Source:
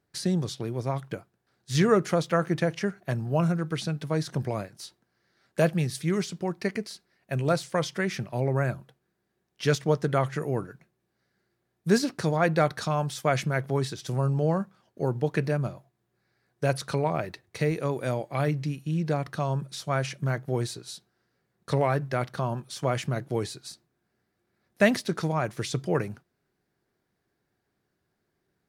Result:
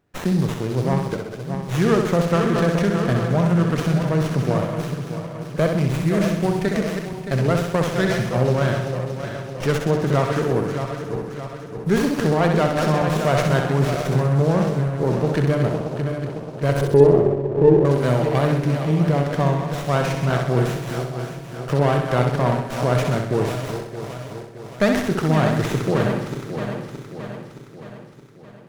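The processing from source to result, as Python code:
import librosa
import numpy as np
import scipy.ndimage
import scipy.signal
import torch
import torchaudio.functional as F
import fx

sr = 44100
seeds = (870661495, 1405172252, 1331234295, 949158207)

p1 = fx.reverse_delay_fb(x, sr, ms=310, feedback_pct=72, wet_db=-9.5)
p2 = fx.over_compress(p1, sr, threshold_db=-26.0, ratio=-0.5)
p3 = p1 + (p2 * 10.0 ** (-2.0 / 20.0))
p4 = fx.lowpass_res(p3, sr, hz=400.0, q=4.5, at=(16.81, 17.85))
p5 = fx.room_flutter(p4, sr, wall_m=11.0, rt60_s=0.72)
p6 = fx.running_max(p5, sr, window=9)
y = p6 * 10.0 ** (1.5 / 20.0)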